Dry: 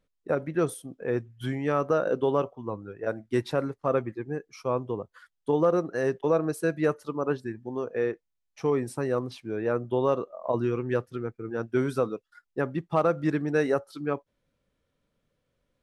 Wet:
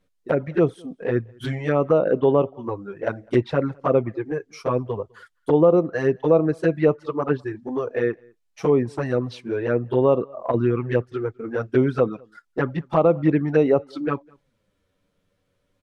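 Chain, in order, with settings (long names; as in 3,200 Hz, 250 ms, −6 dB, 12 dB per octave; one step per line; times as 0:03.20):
flanger swept by the level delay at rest 10.7 ms, full sweep at −20.5 dBFS
treble cut that deepens with the level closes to 2,300 Hz, closed at −24.5 dBFS
slap from a distant wall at 35 metres, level −29 dB
level +8.5 dB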